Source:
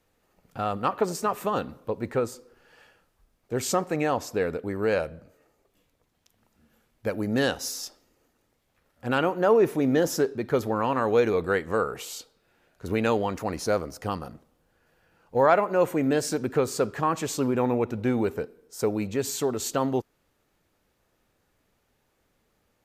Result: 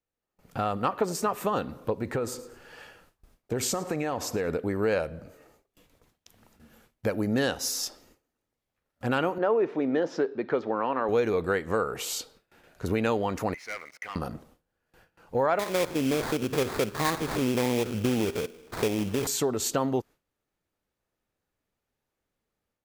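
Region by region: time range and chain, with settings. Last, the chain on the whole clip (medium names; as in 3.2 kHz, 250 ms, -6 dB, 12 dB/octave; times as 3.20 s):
2.00–4.49 s: compression, threshold -27 dBFS + feedback delay 109 ms, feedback 32%, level -19.5 dB
9.38–11.09 s: band-pass 270–8000 Hz + distance through air 240 m
13.54–14.16 s: band-pass filter 2.1 kHz, Q 12 + waveshaping leveller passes 3
15.59–19.27 s: spectrogram pixelated in time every 50 ms + sample-rate reducer 2.9 kHz, jitter 20%
whole clip: level rider gain up to 8 dB; gate with hold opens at -47 dBFS; compression 2:1, threshold -30 dBFS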